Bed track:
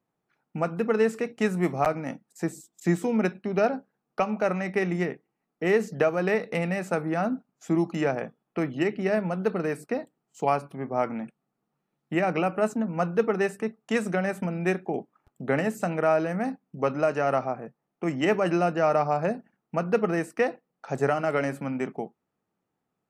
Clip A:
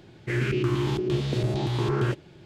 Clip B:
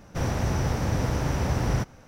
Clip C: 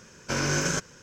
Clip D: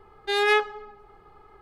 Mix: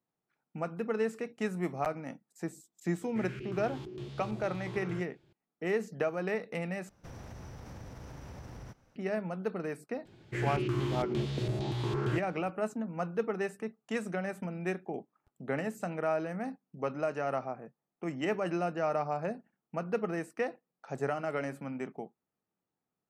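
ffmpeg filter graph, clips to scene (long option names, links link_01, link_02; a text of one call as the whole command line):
ffmpeg -i bed.wav -i cue0.wav -i cue1.wav -filter_complex "[1:a]asplit=2[link_01][link_02];[0:a]volume=-8.5dB[link_03];[2:a]acompressor=threshold=-26dB:ratio=6:attack=3.2:release=140:knee=1:detection=peak[link_04];[link_03]asplit=2[link_05][link_06];[link_05]atrim=end=6.894[link_07];[link_04]atrim=end=2.07,asetpts=PTS-STARTPTS,volume=-16dB[link_08];[link_06]atrim=start=8.956[link_09];[link_01]atrim=end=2.45,asetpts=PTS-STARTPTS,volume=-16.5dB,afade=type=in:duration=0.004:curve=hsin,afade=type=out:start_time=2.446:duration=0.004:curve=hsin,adelay=2880[link_10];[link_02]atrim=end=2.45,asetpts=PTS-STARTPTS,volume=-7dB,afade=type=in:duration=0.004:curve=hsin,afade=type=out:start_time=2.446:duration=0.004:curve=hsin,adelay=10050[link_11];[link_07][link_08]acrossfade=duration=0.004:curve1=hsin:curve2=hsin[link_12];[link_12][link_09]acrossfade=duration=0.004:curve1=hsin:curve2=hsin[link_13];[link_13][link_10][link_11]amix=inputs=3:normalize=0" out.wav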